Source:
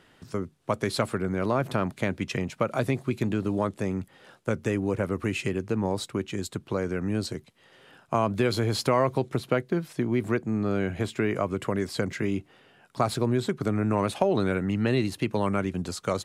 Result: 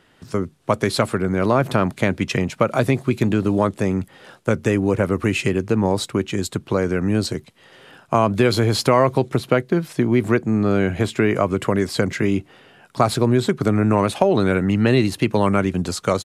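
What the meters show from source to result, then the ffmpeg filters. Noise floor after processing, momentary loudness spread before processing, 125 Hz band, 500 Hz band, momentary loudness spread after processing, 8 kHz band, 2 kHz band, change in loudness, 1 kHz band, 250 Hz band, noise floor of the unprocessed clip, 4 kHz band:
−53 dBFS, 7 LU, +8.0 dB, +8.0 dB, 6 LU, +8.0 dB, +8.0 dB, +8.0 dB, +8.0 dB, +8.0 dB, −59 dBFS, +8.0 dB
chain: -af "dynaudnorm=framelen=160:gausssize=3:maxgain=7dB,aresample=32000,aresample=44100,volume=1.5dB"

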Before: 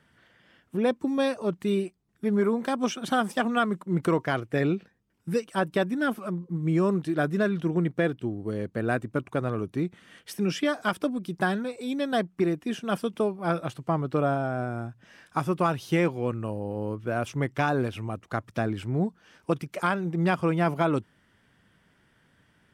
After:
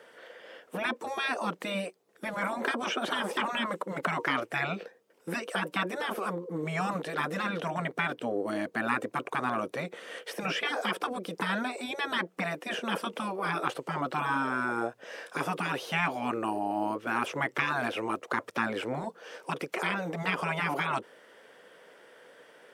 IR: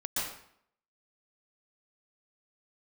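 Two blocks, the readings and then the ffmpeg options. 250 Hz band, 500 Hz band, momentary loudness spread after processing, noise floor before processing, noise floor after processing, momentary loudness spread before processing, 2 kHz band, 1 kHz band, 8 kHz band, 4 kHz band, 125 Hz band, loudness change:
−8.5 dB, −7.0 dB, 8 LU, −66 dBFS, −61 dBFS, 7 LU, +2.0 dB, −0.5 dB, −1.5 dB, +3.0 dB, −10.5 dB, −4.0 dB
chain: -filter_complex "[0:a]acrossover=split=2800[link_01][link_02];[link_02]acompressor=threshold=-53dB:ratio=4:attack=1:release=60[link_03];[link_01][link_03]amix=inputs=2:normalize=0,highpass=frequency=490:width_type=q:width=4.9,afftfilt=real='re*lt(hypot(re,im),0.112)':imag='im*lt(hypot(re,im),0.112)':win_size=1024:overlap=0.75,volume=8.5dB"

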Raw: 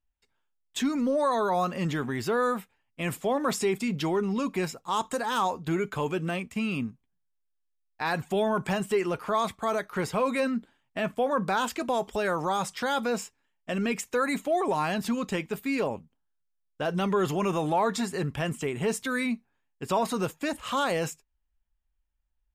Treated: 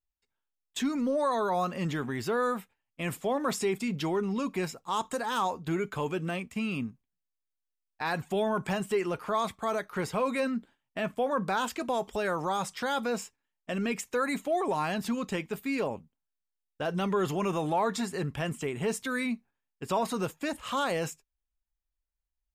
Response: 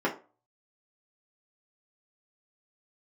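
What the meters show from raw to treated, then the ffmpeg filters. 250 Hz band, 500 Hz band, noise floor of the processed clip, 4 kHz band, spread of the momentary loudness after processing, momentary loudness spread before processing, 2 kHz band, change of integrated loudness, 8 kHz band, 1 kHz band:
−2.5 dB, −2.5 dB, −85 dBFS, −2.5 dB, 7 LU, 7 LU, −2.5 dB, −2.5 dB, −2.5 dB, −2.5 dB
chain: -af "agate=range=-7dB:threshold=-49dB:ratio=16:detection=peak,volume=-2.5dB"

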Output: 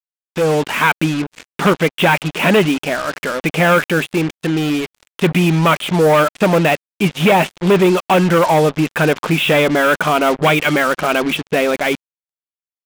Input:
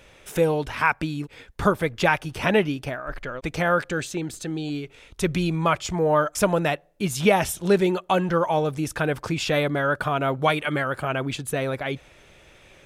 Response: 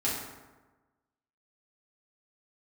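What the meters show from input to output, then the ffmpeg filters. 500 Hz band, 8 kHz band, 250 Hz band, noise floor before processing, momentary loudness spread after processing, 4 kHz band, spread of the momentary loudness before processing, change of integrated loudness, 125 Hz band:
+8.5 dB, +5.0 dB, +9.5 dB, −53 dBFS, 7 LU, +11.0 dB, 10 LU, +9.0 dB, +8.5 dB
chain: -af "asoftclip=type=hard:threshold=-17.5dB,aexciter=amount=1.3:drive=1.2:freq=2300,asoftclip=type=tanh:threshold=-18.5dB,afftfilt=real='re*between(b*sr/4096,140,4000)':imag='im*between(b*sr/4096,140,4000)':win_size=4096:overlap=0.75,dynaudnorm=framelen=200:gausssize=5:maxgain=12.5dB,acrusher=bits=3:mix=0:aa=0.5"

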